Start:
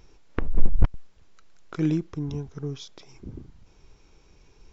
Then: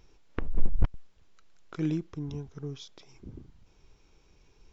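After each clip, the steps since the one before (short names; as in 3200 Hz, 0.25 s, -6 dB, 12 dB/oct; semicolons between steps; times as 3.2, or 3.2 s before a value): bell 3200 Hz +2 dB; gain -5.5 dB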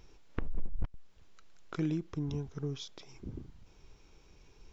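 compressor 3:1, threshold -32 dBFS, peak gain reduction 14.5 dB; gain +2 dB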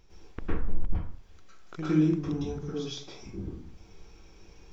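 plate-style reverb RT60 0.52 s, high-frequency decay 0.65×, pre-delay 95 ms, DRR -9.5 dB; gain -3.5 dB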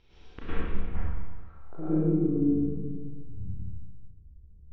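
low-pass sweep 3500 Hz -> 110 Hz, 0.48–3.29; Schroeder reverb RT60 1.4 s, combs from 28 ms, DRR -4.5 dB; gain -5 dB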